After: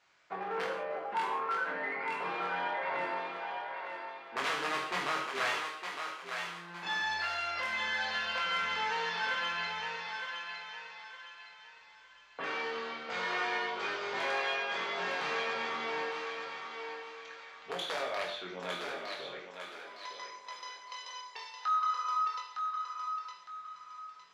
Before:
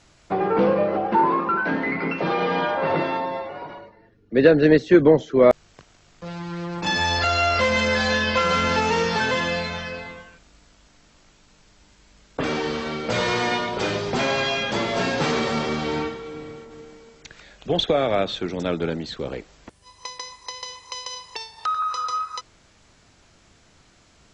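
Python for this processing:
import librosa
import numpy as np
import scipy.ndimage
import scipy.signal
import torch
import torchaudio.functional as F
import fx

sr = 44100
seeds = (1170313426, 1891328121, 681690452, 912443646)

p1 = fx.peak_eq(x, sr, hz=120.0, db=-4.5, octaves=2.8)
p2 = fx.rider(p1, sr, range_db=4, speed_s=0.5)
p3 = p1 + (p2 * librosa.db_to_amplitude(-2.0))
p4 = (np.mod(10.0 ** (6.5 / 20.0) * p3 + 1.0, 2.0) - 1.0) / 10.0 ** (6.5 / 20.0)
p5 = fx.rev_gated(p4, sr, seeds[0], gate_ms=210, shape='falling', drr_db=0.5)
p6 = np.clip(p5, -10.0 ** (-10.0 / 20.0), 10.0 ** (-10.0 / 20.0))
p7 = scipy.signal.sosfilt(scipy.signal.butter(2, 1600.0, 'lowpass', fs=sr, output='sos'), p6)
p8 = np.diff(p7, prepend=0.0)
p9 = fx.doubler(p8, sr, ms=22.0, db=-5.5)
p10 = fx.echo_thinned(p9, sr, ms=910, feedback_pct=36, hz=520.0, wet_db=-5)
y = p10 * librosa.db_to_amplitude(-1.0)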